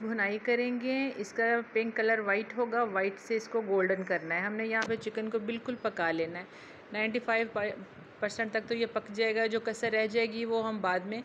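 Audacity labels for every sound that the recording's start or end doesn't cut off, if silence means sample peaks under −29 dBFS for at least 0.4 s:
6.940000	7.710000	sound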